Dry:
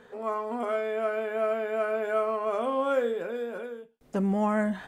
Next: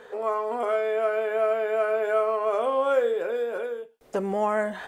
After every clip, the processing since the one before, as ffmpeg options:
-filter_complex "[0:a]lowshelf=f=310:t=q:w=1.5:g=-8.5,asplit=2[s0][s1];[s1]acompressor=threshold=0.02:ratio=6,volume=1[s2];[s0][s2]amix=inputs=2:normalize=0"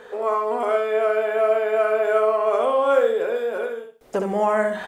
-af "aecho=1:1:65|130|195:0.531|0.111|0.0234,volume=1.5"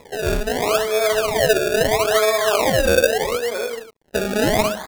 -af "acrusher=samples=29:mix=1:aa=0.000001:lfo=1:lforange=29:lforate=0.76,aeval=exprs='sgn(val(0))*max(abs(val(0))-0.00335,0)':c=same,volume=1.26"

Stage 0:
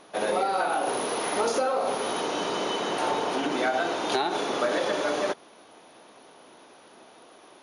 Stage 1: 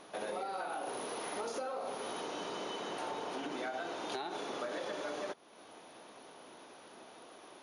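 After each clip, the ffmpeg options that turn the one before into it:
-af "acompressor=threshold=0.00708:ratio=2,volume=0.75"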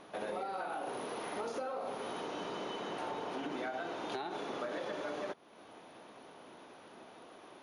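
-af "bass=f=250:g=4,treble=f=4000:g=-7"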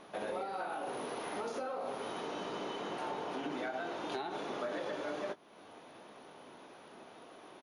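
-filter_complex "[0:a]flanger=delay=4.7:depth=2.8:regen=-75:speed=1.3:shape=sinusoidal,asplit=2[s0][s1];[s1]adelay=20,volume=0.237[s2];[s0][s2]amix=inputs=2:normalize=0,volume=1.68"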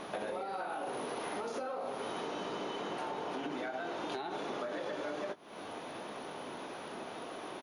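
-af "acompressor=threshold=0.00398:ratio=4,volume=3.35"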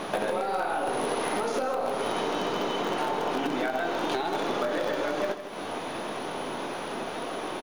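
-filter_complex "[0:a]asplit=2[s0][s1];[s1]acrusher=bits=6:dc=4:mix=0:aa=0.000001,volume=0.266[s2];[s0][s2]amix=inputs=2:normalize=0,aecho=1:1:157:0.299,volume=2.66"

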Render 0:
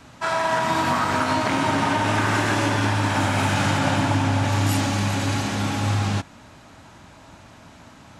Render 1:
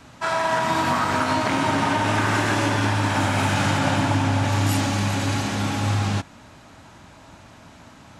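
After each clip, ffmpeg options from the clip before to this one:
-af anull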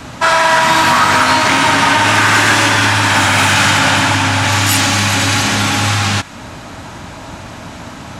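-filter_complex "[0:a]acrossover=split=1100[s0][s1];[s0]acompressor=threshold=0.0224:ratio=4[s2];[s2][s1]amix=inputs=2:normalize=0,aeval=exprs='0.266*sin(PI/2*1.78*val(0)/0.266)':c=same,volume=2.37"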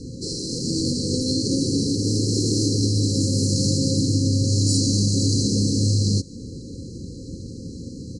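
-af "afftfilt=real='re*(1-between(b*sr/4096,540,4000))':imag='im*(1-between(b*sr/4096,540,4000))':win_size=4096:overlap=0.75,aresample=22050,aresample=44100,highshelf=f=6300:g=-11,volume=0.794"

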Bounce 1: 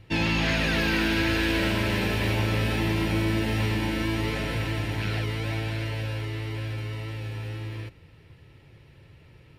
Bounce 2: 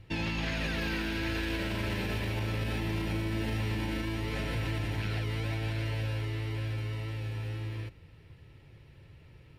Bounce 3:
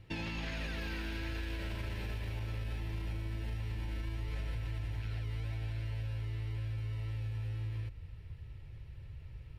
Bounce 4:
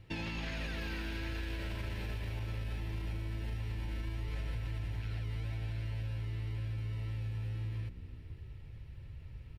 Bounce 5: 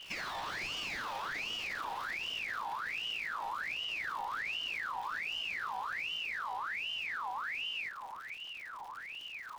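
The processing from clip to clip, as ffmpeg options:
-af "lowshelf=f=84:g=6,alimiter=limit=0.1:level=0:latency=1:release=65,volume=0.631"
-af "asubboost=boost=7:cutoff=85,acompressor=threshold=0.0251:ratio=6,volume=0.708"
-filter_complex "[0:a]asplit=6[s0][s1][s2][s3][s4][s5];[s1]adelay=166,afreqshift=67,volume=0.0794[s6];[s2]adelay=332,afreqshift=134,volume=0.0479[s7];[s3]adelay=498,afreqshift=201,volume=0.0285[s8];[s4]adelay=664,afreqshift=268,volume=0.0172[s9];[s5]adelay=830,afreqshift=335,volume=0.0104[s10];[s0][s6][s7][s8][s9][s10]amix=inputs=6:normalize=0"
-af "aeval=exprs='val(0)+0.5*0.00668*sgn(val(0))':c=same,aeval=exprs='val(0)*sin(2*PI*1900*n/s+1900*0.55/1.3*sin(2*PI*1.3*n/s))':c=same"

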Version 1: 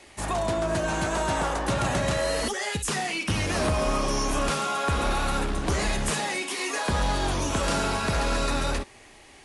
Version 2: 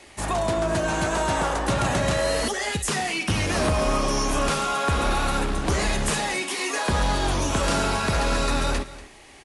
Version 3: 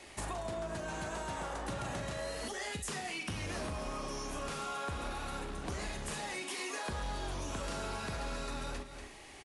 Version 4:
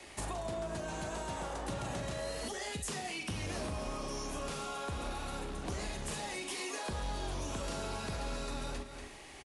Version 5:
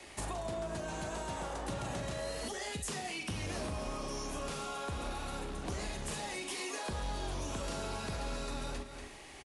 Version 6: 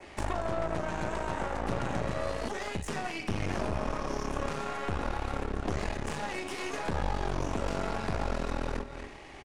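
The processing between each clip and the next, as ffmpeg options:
-af "aecho=1:1:239:0.141,volume=1.33"
-filter_complex "[0:a]acompressor=threshold=0.0224:ratio=6,asplit=2[s0][s1];[s1]adelay=41,volume=0.299[s2];[s0][s2]amix=inputs=2:normalize=0,volume=0.596"
-filter_complex "[0:a]acrossover=split=140|1200|2000[s0][s1][s2][s3];[s2]acompressor=threshold=0.00112:ratio=6[s4];[s0][s1][s4][s3]amix=inputs=4:normalize=0,aecho=1:1:441:0.0794,volume=1.12"
-af anull
-af "adynamicequalizer=threshold=0.00112:dfrequency=3700:dqfactor=1.4:tfrequency=3700:tqfactor=1.4:attack=5:release=100:ratio=0.375:range=3.5:mode=cutabove:tftype=bell,adynamicsmooth=sensitivity=3.5:basefreq=4600,aeval=exprs='0.0447*(cos(1*acos(clip(val(0)/0.0447,-1,1)))-cos(1*PI/2))+0.0141*(cos(4*acos(clip(val(0)/0.0447,-1,1)))-cos(4*PI/2))':c=same,volume=1.78"

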